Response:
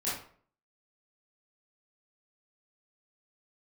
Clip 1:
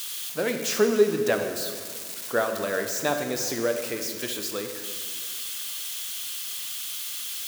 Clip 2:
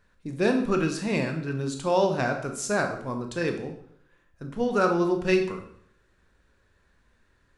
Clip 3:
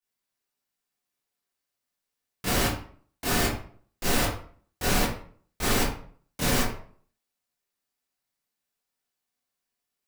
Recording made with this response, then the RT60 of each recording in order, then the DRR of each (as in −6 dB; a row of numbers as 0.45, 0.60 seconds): 3; 2.0, 0.65, 0.50 seconds; 5.0, 4.0, −10.5 decibels